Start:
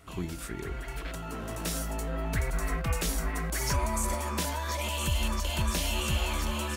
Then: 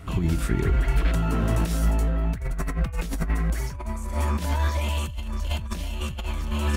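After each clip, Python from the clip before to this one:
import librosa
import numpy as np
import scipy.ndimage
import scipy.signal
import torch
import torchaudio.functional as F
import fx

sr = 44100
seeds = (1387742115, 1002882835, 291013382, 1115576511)

y = fx.over_compress(x, sr, threshold_db=-34.0, ratio=-0.5)
y = fx.bass_treble(y, sr, bass_db=9, treble_db=-5)
y = F.gain(torch.from_numpy(y), 4.0).numpy()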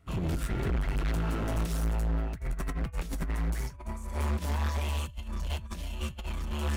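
y = np.clip(x, -10.0 ** (-25.5 / 20.0), 10.0 ** (-25.5 / 20.0))
y = fx.upward_expand(y, sr, threshold_db=-39.0, expansion=2.5)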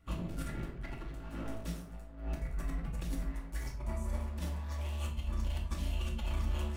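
y = fx.over_compress(x, sr, threshold_db=-33.0, ratio=-0.5)
y = fx.room_shoebox(y, sr, seeds[0], volume_m3=650.0, walls='furnished', distance_m=2.4)
y = F.gain(torch.from_numpy(y), -8.0).numpy()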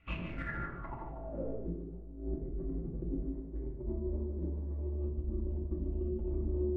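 y = fx.filter_sweep_lowpass(x, sr, from_hz=2500.0, to_hz=370.0, start_s=0.22, end_s=1.7, q=6.6)
y = y + 10.0 ** (-8.5 / 20.0) * np.pad(y, (int(148 * sr / 1000.0), 0))[:len(y)]
y = F.gain(torch.from_numpy(y), -2.0).numpy()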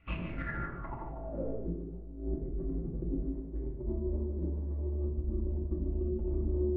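y = fx.air_absorb(x, sr, metres=190.0)
y = F.gain(torch.from_numpy(y), 2.5).numpy()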